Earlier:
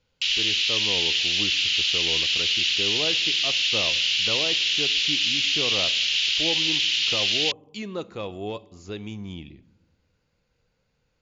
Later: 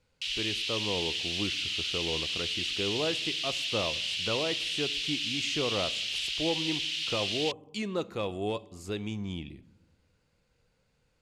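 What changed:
background −10.0 dB
master: remove linear-phase brick-wall low-pass 7,300 Hz

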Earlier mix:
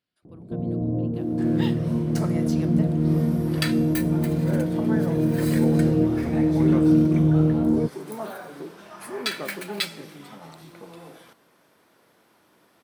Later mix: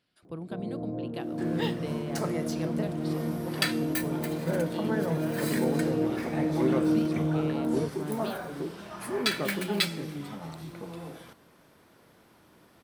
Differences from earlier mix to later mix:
speech +9.5 dB
first sound: add spectral tilt +4.5 dB per octave
second sound: remove high-pass filter 300 Hz 6 dB per octave

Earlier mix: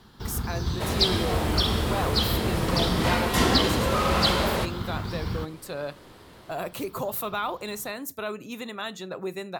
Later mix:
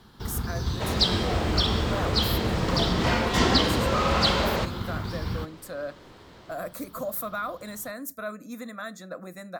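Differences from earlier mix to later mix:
speech: add phaser with its sweep stopped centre 590 Hz, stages 8
second sound: add low-pass filter 7,300 Hz 24 dB per octave

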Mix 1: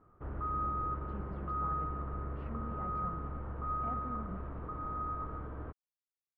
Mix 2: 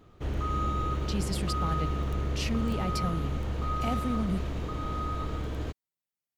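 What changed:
speech +5.0 dB
master: remove transistor ladder low-pass 1,500 Hz, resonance 50%

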